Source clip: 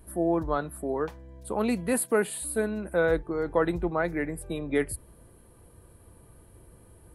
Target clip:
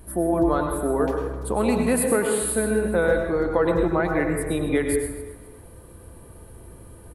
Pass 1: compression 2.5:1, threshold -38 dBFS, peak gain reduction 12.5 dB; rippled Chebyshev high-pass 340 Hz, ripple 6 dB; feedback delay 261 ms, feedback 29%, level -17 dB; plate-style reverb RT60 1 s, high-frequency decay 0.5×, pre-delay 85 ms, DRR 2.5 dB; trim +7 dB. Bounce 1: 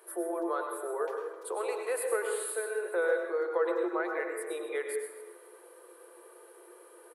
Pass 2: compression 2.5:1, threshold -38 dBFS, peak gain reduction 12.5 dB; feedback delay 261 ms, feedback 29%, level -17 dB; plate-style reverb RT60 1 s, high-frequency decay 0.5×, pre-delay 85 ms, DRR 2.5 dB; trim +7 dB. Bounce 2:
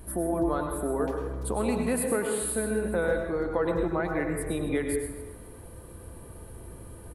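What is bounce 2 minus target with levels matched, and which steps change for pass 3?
compression: peak gain reduction +6.5 dB
change: compression 2.5:1, threshold -27.5 dBFS, peak gain reduction 6.5 dB

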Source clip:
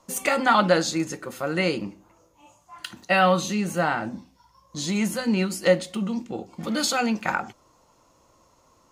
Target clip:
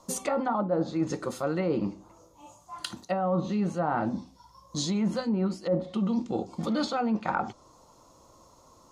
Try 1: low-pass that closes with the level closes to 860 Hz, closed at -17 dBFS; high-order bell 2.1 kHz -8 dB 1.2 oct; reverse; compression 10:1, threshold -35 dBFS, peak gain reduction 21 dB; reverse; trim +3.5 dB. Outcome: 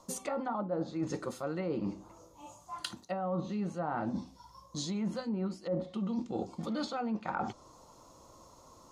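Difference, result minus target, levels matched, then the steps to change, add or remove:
compression: peak gain reduction +7 dB
change: compression 10:1, threshold -27 dBFS, peak gain reduction 13.5 dB

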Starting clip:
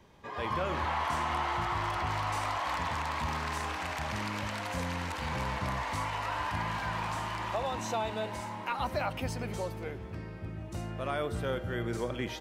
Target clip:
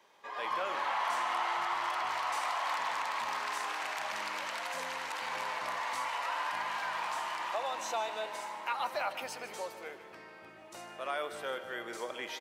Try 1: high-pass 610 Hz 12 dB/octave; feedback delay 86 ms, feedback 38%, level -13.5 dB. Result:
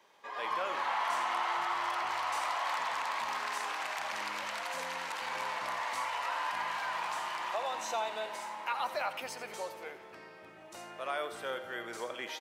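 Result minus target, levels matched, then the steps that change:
echo 65 ms early
change: feedback delay 151 ms, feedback 38%, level -13.5 dB

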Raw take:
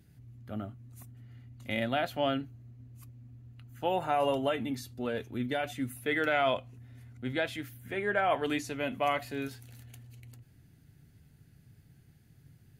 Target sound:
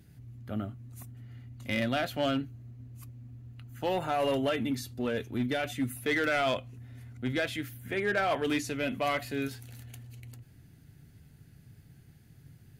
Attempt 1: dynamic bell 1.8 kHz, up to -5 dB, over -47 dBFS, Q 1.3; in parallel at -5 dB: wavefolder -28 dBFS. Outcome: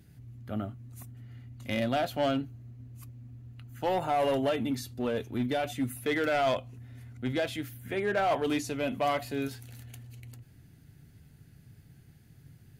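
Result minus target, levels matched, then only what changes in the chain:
2 kHz band -4.0 dB
change: dynamic bell 810 Hz, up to -5 dB, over -47 dBFS, Q 1.3

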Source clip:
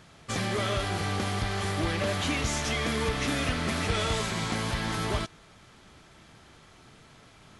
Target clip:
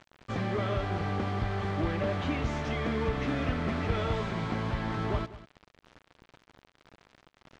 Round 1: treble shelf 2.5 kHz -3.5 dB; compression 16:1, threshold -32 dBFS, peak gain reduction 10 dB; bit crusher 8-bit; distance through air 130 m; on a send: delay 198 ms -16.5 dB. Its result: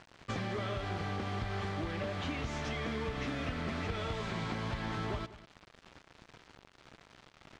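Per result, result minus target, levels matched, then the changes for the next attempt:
compression: peak gain reduction +10 dB; 4 kHz band +4.5 dB
remove: compression 16:1, threshold -32 dBFS, peak gain reduction 10 dB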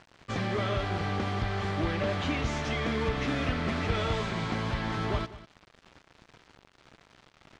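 4 kHz band +4.5 dB
change: treble shelf 2.5 kHz -12 dB

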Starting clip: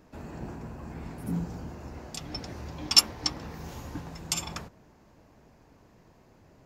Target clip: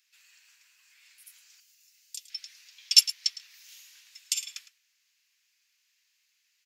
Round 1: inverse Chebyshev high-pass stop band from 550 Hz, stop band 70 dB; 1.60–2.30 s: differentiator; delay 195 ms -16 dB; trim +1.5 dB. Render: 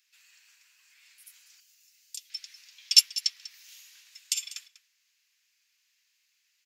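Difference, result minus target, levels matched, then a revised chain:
echo 86 ms late
inverse Chebyshev high-pass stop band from 550 Hz, stop band 70 dB; 1.60–2.30 s: differentiator; delay 109 ms -16 dB; trim +1.5 dB

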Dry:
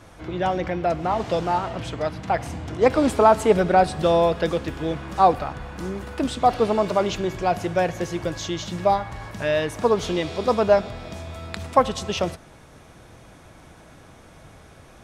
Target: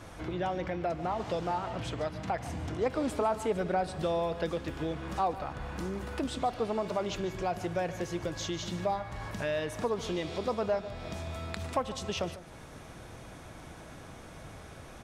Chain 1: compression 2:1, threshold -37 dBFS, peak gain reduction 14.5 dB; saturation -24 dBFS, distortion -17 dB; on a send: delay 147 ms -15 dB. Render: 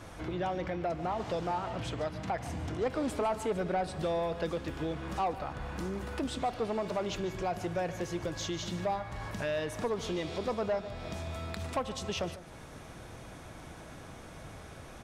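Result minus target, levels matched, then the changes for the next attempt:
saturation: distortion +12 dB
change: saturation -16 dBFS, distortion -29 dB

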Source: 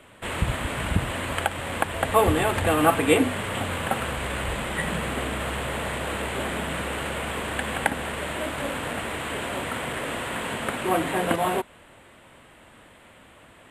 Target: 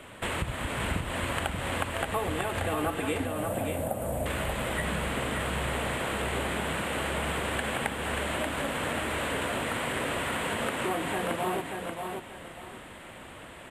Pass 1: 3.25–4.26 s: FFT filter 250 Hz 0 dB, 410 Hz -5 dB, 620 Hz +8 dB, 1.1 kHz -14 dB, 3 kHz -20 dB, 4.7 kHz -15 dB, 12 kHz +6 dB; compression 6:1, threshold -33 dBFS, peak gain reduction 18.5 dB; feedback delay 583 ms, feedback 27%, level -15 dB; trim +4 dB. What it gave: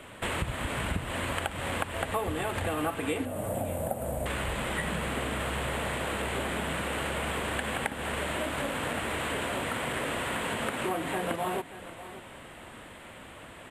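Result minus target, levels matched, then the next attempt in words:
echo-to-direct -10 dB
3.25–4.26 s: FFT filter 250 Hz 0 dB, 410 Hz -5 dB, 620 Hz +8 dB, 1.1 kHz -14 dB, 3 kHz -20 dB, 4.7 kHz -15 dB, 12 kHz +6 dB; compression 6:1, threshold -33 dBFS, peak gain reduction 18.5 dB; feedback delay 583 ms, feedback 27%, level -5 dB; trim +4 dB

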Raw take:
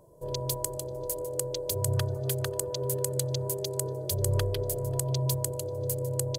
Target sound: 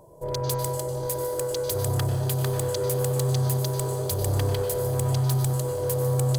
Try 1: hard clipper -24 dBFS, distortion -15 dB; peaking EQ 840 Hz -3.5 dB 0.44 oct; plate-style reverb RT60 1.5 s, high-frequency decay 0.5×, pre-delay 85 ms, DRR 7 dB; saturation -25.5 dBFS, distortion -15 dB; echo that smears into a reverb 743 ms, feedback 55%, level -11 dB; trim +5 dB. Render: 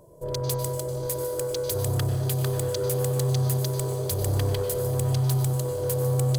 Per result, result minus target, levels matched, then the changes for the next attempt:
hard clipper: distortion +13 dB; 1 kHz band -3.0 dB
change: hard clipper -17.5 dBFS, distortion -27 dB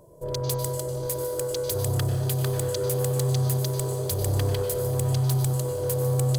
1 kHz band -3.5 dB
change: peaking EQ 840 Hz +7 dB 0.44 oct

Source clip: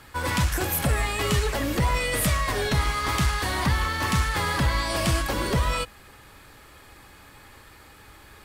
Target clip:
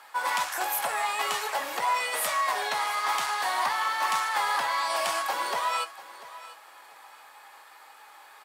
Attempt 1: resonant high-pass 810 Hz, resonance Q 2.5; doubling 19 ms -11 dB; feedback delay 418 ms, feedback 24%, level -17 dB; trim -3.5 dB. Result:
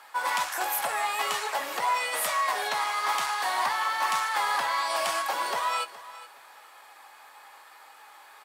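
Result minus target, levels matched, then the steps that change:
echo 274 ms early
change: feedback delay 692 ms, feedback 24%, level -17 dB

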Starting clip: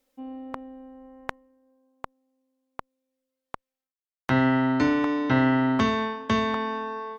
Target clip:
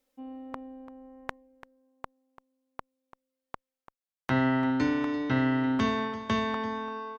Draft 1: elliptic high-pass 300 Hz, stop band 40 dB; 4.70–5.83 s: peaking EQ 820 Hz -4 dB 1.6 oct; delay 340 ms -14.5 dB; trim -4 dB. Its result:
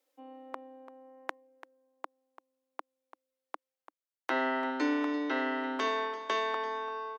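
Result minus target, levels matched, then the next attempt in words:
250 Hz band -3.0 dB
4.70–5.83 s: peaking EQ 820 Hz -4 dB 1.6 oct; delay 340 ms -14.5 dB; trim -4 dB

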